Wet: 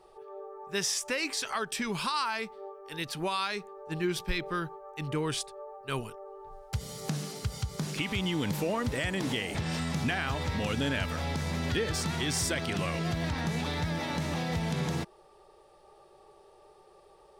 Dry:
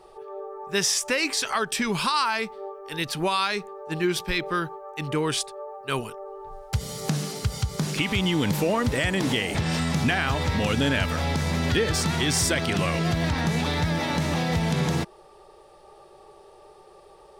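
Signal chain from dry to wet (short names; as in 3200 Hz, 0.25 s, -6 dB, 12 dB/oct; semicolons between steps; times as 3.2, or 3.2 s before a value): 3.77–6.16 low shelf 120 Hz +8.5 dB; gain -7 dB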